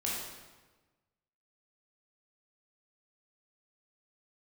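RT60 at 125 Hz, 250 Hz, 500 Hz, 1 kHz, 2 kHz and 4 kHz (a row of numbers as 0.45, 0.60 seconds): 1.5, 1.4, 1.3, 1.2, 1.1, 1.0 seconds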